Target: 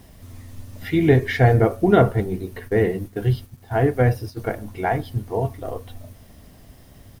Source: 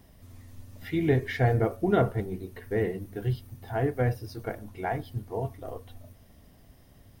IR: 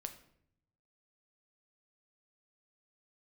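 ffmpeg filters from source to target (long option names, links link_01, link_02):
-filter_complex "[0:a]aresample=32000,aresample=44100,asplit=3[link_01][link_02][link_03];[link_01]afade=type=out:start_time=2.67:duration=0.02[link_04];[link_02]agate=range=-11dB:threshold=-39dB:ratio=16:detection=peak,afade=type=in:start_time=2.67:duration=0.02,afade=type=out:start_time=4.4:duration=0.02[link_05];[link_03]afade=type=in:start_time=4.4:duration=0.02[link_06];[link_04][link_05][link_06]amix=inputs=3:normalize=0,acrusher=bits=10:mix=0:aa=0.000001,volume=8.5dB"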